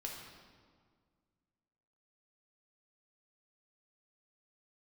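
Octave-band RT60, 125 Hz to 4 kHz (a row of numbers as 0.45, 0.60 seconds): 2.3, 2.3, 1.9, 1.8, 1.4, 1.2 seconds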